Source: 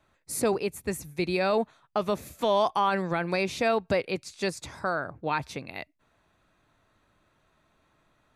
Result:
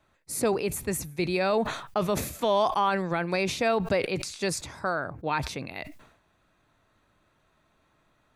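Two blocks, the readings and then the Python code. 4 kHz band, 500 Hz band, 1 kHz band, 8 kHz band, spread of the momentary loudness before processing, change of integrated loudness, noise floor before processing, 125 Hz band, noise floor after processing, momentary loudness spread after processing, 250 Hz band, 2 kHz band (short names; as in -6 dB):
+1.5 dB, +0.5 dB, +0.5 dB, +4.0 dB, 10 LU, +0.5 dB, -69 dBFS, +2.5 dB, -68 dBFS, 8 LU, +1.0 dB, +0.5 dB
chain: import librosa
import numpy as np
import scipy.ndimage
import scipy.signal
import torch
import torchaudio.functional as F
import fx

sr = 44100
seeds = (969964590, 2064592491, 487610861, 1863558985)

y = fx.sustainer(x, sr, db_per_s=79.0)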